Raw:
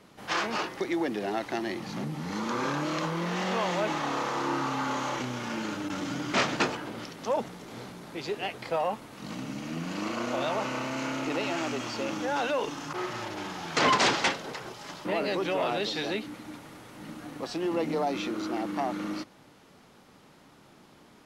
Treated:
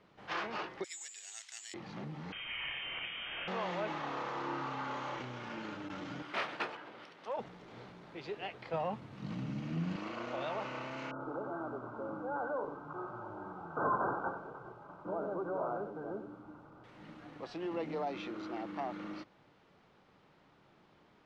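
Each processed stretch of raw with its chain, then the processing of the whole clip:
0.84–1.74 s: careless resampling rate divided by 6×, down none, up zero stuff + Butterworth band-pass 5 kHz, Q 0.75
2.32–3.48 s: CVSD coder 64 kbps + Bessel high-pass 270 Hz + frequency inversion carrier 3.4 kHz
6.22–7.39 s: high-pass 570 Hz 6 dB/octave + decimation joined by straight lines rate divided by 3×
8.73–9.96 s: high-pass 91 Hz + tone controls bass +14 dB, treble +2 dB
11.11–16.84 s: brick-wall FIR low-pass 1.6 kHz + bit-crushed delay 92 ms, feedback 35%, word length 9-bit, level -9 dB
whole clip: low-pass 3.5 kHz 12 dB/octave; peaking EQ 250 Hz -5.5 dB 0.47 oct; trim -8 dB

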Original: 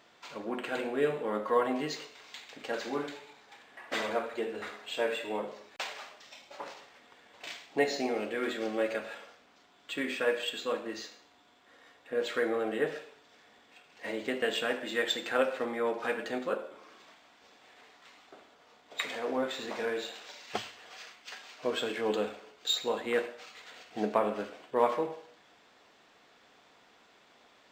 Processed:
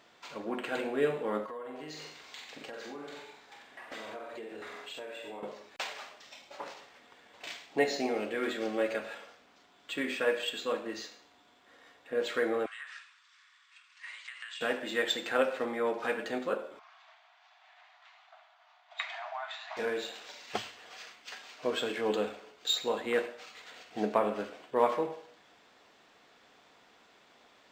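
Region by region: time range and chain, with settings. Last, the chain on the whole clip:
1.44–5.43 s: flutter echo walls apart 7.8 m, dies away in 0.45 s + compression, threshold -40 dBFS
12.66–14.61 s: Chebyshev band-pass 1.1–8.8 kHz, order 4 + compression, threshold -40 dBFS
16.79–19.77 s: brick-wall FIR band-pass 610–8200 Hz + distance through air 150 m + band-stop 5.3 kHz, Q 27
whole clip: none

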